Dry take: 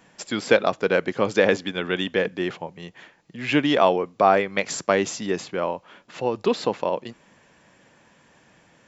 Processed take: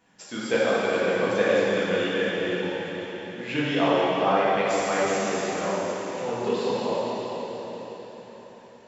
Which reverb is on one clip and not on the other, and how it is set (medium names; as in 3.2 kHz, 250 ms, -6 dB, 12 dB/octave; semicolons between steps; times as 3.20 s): plate-style reverb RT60 4.7 s, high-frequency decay 0.95×, DRR -9.5 dB; trim -11.5 dB